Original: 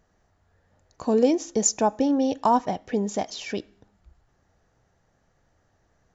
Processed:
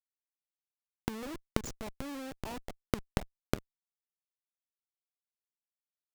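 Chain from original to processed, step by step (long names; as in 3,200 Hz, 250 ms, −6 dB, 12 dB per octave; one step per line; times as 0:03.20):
comparator with hysteresis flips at −20.5 dBFS
gate with flip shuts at −31 dBFS, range −24 dB
level +11 dB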